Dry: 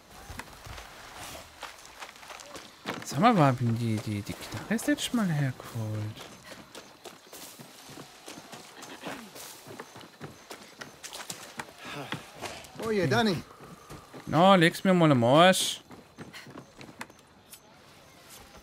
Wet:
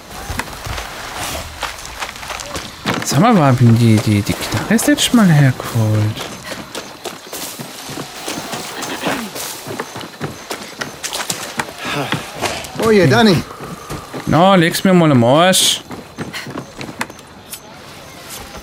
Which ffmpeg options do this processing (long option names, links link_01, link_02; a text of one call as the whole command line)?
ffmpeg -i in.wav -filter_complex "[0:a]asplit=3[link_01][link_02][link_03];[link_01]afade=type=out:start_time=1.34:duration=0.02[link_04];[link_02]asubboost=boost=3.5:cutoff=180,afade=type=in:start_time=1.34:duration=0.02,afade=type=out:start_time=2.93:duration=0.02[link_05];[link_03]afade=type=in:start_time=2.93:duration=0.02[link_06];[link_04][link_05][link_06]amix=inputs=3:normalize=0,asettb=1/sr,asplit=3[link_07][link_08][link_09];[link_07]atrim=end=8.164[link_10];[link_08]atrim=start=8.16:end=9.27,asetpts=PTS-STARTPTS,afade=type=in:duration=0.004:curve=qsin,afade=type=out:start_time=1.106:duration=0.004:curve=qsin,aeval=exprs='val(0)+0.5*0.00335*sgn(val(0))':channel_layout=same[link_11];[link_09]atrim=start=9.266[link_12];[link_10][link_11]acrossfade=duration=0.004:curve1=hsin:curve2=qsin[link_13];[link_13][link_12]acrossfade=duration=0.004:curve1=qsin:curve2=hsin,alimiter=level_in=20dB:limit=-1dB:release=50:level=0:latency=1,volume=-1dB" out.wav